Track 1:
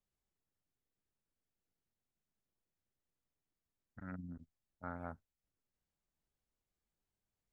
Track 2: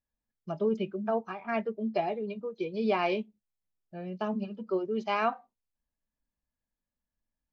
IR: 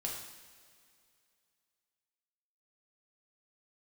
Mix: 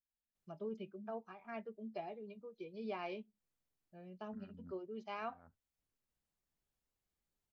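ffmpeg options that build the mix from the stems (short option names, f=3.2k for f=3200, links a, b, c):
-filter_complex "[0:a]alimiter=level_in=13dB:limit=-24dB:level=0:latency=1:release=211,volume=-13dB,adelay=350,volume=-0.5dB[a];[1:a]volume=-15dB,asplit=2[b][c];[c]apad=whole_len=347391[d];[a][d]sidechaincompress=threshold=-58dB:ratio=8:attack=7.6:release=231[e];[e][b]amix=inputs=2:normalize=0"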